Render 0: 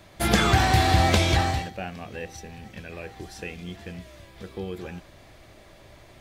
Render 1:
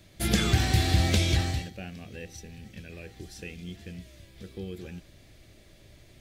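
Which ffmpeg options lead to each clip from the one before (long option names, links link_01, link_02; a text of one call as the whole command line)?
ffmpeg -i in.wav -af "equalizer=frequency=960:width=0.85:gain=-14,volume=-1.5dB" out.wav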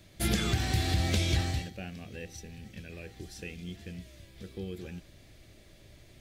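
ffmpeg -i in.wav -af "alimiter=limit=-16dB:level=0:latency=1:release=362,volume=-1dB" out.wav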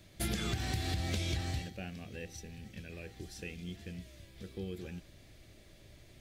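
ffmpeg -i in.wav -af "acompressor=threshold=-29dB:ratio=6,volume=-2dB" out.wav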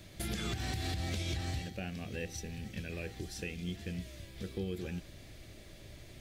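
ffmpeg -i in.wav -af "alimiter=level_in=8.5dB:limit=-24dB:level=0:latency=1:release=351,volume=-8.5dB,volume=5.5dB" out.wav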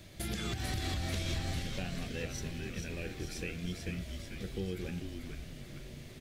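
ffmpeg -i in.wav -filter_complex "[0:a]asplit=9[link_01][link_02][link_03][link_04][link_05][link_06][link_07][link_08][link_09];[link_02]adelay=443,afreqshift=-110,volume=-5.5dB[link_10];[link_03]adelay=886,afreqshift=-220,volume=-10.1dB[link_11];[link_04]adelay=1329,afreqshift=-330,volume=-14.7dB[link_12];[link_05]adelay=1772,afreqshift=-440,volume=-19.2dB[link_13];[link_06]adelay=2215,afreqshift=-550,volume=-23.8dB[link_14];[link_07]adelay=2658,afreqshift=-660,volume=-28.4dB[link_15];[link_08]adelay=3101,afreqshift=-770,volume=-33dB[link_16];[link_09]adelay=3544,afreqshift=-880,volume=-37.6dB[link_17];[link_01][link_10][link_11][link_12][link_13][link_14][link_15][link_16][link_17]amix=inputs=9:normalize=0" out.wav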